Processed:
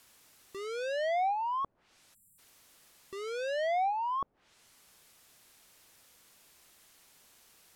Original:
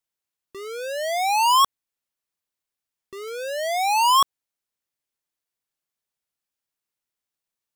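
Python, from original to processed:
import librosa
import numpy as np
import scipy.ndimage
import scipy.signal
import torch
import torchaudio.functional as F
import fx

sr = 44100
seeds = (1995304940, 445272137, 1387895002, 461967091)

y = fx.dmg_noise_colour(x, sr, seeds[0], colour='white', level_db=-56.0)
y = fx.spec_erase(y, sr, start_s=2.14, length_s=0.25, low_hz=240.0, high_hz=7200.0)
y = fx.env_lowpass_down(y, sr, base_hz=560.0, full_db=-20.0)
y = F.gain(torch.from_numpy(y), -4.5).numpy()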